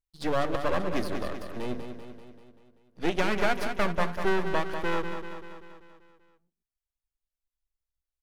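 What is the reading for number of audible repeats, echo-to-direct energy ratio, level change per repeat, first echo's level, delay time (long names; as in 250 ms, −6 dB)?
6, −6.0 dB, −4.5 dB, −8.0 dB, 194 ms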